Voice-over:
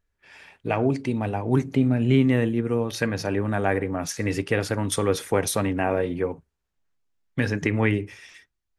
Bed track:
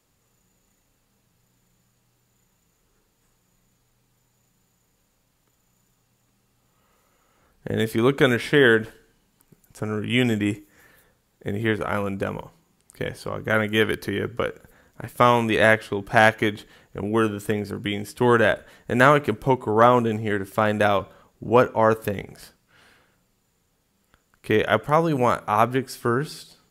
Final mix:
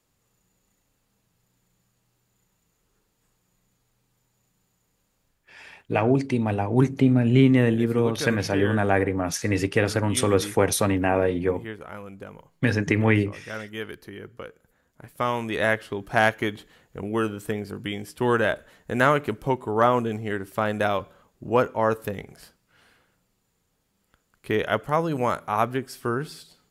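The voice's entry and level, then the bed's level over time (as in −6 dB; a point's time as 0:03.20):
5.25 s, +2.0 dB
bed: 0:05.25 −4 dB
0:05.51 −13.5 dB
0:14.56 −13.5 dB
0:15.93 −4 dB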